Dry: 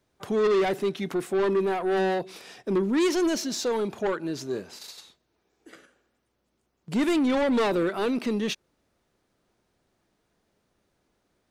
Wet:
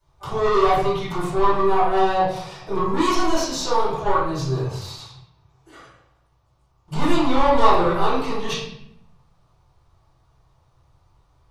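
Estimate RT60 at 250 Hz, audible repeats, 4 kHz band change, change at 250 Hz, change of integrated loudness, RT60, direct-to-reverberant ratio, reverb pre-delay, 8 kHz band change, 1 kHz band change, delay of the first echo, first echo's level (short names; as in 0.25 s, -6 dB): 1.2 s, none, +5.5 dB, +0.5 dB, +4.5 dB, 0.75 s, -14.5 dB, 3 ms, +3.5 dB, +13.0 dB, none, none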